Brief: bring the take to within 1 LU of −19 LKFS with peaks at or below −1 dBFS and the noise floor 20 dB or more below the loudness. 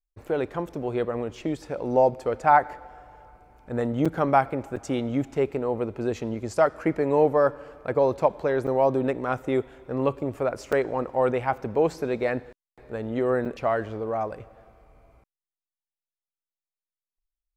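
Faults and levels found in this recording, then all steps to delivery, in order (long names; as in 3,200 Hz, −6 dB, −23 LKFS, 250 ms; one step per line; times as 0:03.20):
number of dropouts 5; longest dropout 5.6 ms; integrated loudness −25.5 LKFS; sample peak −5.5 dBFS; target loudness −19.0 LKFS
→ repair the gap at 0:04.05/0:04.76/0:08.67/0:10.72/0:13.45, 5.6 ms
level +6.5 dB
brickwall limiter −1 dBFS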